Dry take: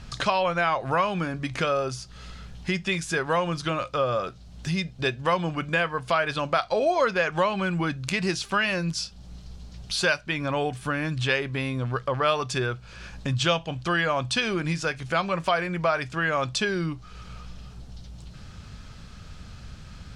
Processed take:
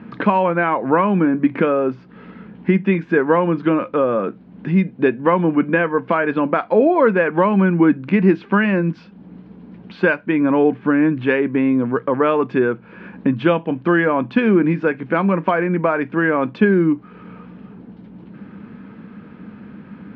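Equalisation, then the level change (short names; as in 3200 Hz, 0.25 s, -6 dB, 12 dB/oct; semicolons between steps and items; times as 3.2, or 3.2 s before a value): speaker cabinet 160–2500 Hz, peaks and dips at 200 Hz +10 dB, 320 Hz +7 dB, 460 Hz +9 dB, 950 Hz +8 dB, 1600 Hz +5 dB, 2200 Hz +3 dB; bell 260 Hz +13 dB 1.1 oct; 0.0 dB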